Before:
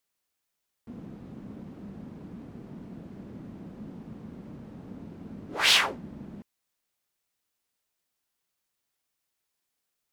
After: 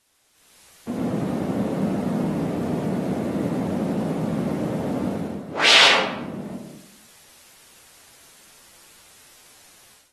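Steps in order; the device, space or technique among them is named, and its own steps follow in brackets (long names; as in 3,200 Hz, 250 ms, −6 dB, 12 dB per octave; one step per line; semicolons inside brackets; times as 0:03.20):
filmed off a television (band-pass filter 180–7,700 Hz; parametric band 600 Hz +5.5 dB 0.52 octaves; convolution reverb RT60 0.75 s, pre-delay 86 ms, DRR −2 dB; white noise bed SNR 32 dB; automatic gain control gain up to 16.5 dB; level −1 dB; AAC 32 kbit/s 44,100 Hz)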